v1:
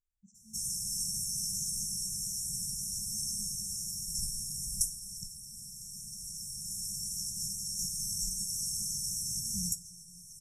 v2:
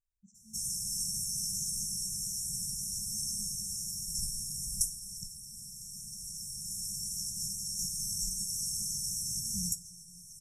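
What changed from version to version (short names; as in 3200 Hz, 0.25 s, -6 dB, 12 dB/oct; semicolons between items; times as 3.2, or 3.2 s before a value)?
none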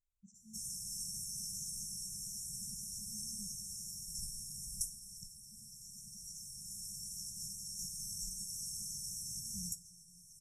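background -8.0 dB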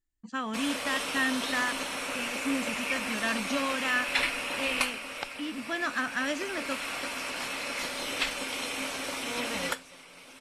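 speech +5.0 dB; master: remove brick-wall FIR band-stop 200–5300 Hz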